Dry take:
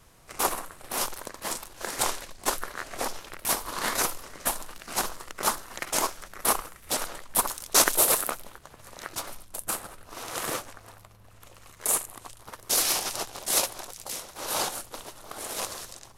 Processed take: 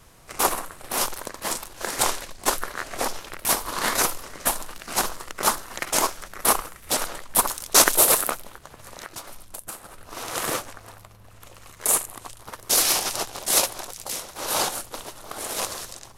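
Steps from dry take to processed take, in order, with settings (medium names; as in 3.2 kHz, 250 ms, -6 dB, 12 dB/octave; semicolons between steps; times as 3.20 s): 8.35–10.13 s: compression 5:1, threshold -39 dBFS, peak gain reduction 12.5 dB; trim +4.5 dB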